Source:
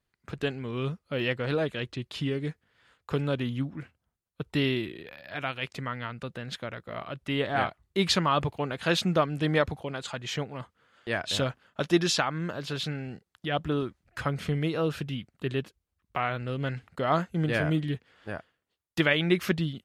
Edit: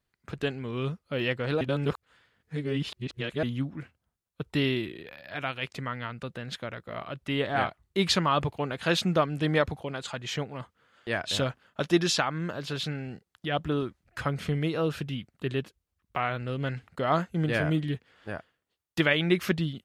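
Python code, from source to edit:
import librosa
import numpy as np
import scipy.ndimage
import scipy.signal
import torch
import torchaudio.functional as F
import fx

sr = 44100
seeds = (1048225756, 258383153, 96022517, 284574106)

y = fx.edit(x, sr, fx.reverse_span(start_s=1.61, length_s=1.82), tone=tone)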